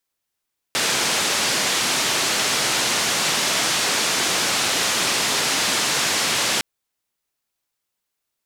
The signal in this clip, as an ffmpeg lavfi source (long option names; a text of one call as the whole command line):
ffmpeg -f lavfi -i "anoisesrc=color=white:duration=5.86:sample_rate=44100:seed=1,highpass=frequency=140,lowpass=frequency=6600,volume=-11.1dB" out.wav